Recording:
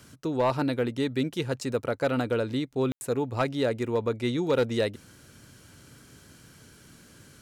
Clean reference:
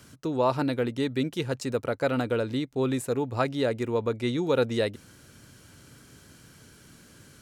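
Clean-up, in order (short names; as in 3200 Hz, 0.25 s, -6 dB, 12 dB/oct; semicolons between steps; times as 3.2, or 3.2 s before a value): clip repair -17.5 dBFS; room tone fill 2.92–3.01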